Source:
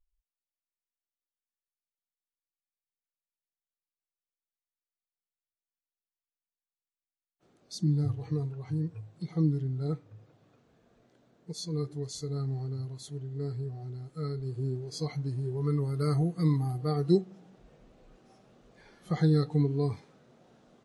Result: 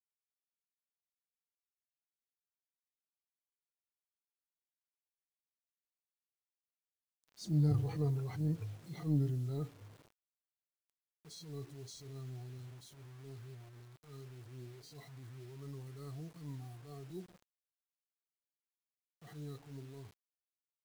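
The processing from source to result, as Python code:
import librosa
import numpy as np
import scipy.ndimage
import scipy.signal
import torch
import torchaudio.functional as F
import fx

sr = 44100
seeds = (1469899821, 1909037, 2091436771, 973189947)

y = fx.doppler_pass(x, sr, speed_mps=16, closest_m=17.0, pass_at_s=8.04)
y = fx.transient(y, sr, attack_db=-10, sustain_db=5)
y = fx.quant_dither(y, sr, seeds[0], bits=10, dither='none')
y = y * librosa.db_to_amplitude(-1.0)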